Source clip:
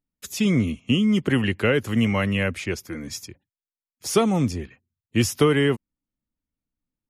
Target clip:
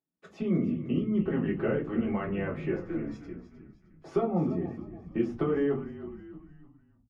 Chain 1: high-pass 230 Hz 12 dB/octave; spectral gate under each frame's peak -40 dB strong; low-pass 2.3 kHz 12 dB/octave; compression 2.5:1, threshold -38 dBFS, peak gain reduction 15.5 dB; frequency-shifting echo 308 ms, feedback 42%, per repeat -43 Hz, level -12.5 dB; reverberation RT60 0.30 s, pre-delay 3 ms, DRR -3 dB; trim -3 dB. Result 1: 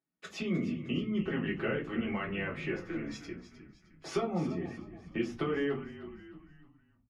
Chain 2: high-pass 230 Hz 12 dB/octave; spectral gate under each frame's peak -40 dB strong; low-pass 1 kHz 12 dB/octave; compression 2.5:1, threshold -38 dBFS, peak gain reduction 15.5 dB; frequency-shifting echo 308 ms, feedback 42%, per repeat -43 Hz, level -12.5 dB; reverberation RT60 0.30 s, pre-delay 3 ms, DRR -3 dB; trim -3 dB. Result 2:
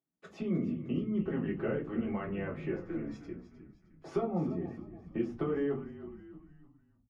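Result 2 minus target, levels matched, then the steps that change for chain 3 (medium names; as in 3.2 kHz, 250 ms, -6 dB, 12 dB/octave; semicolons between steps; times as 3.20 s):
compression: peak gain reduction +5 dB
change: compression 2.5:1, threshold -30 dBFS, peak gain reduction 10.5 dB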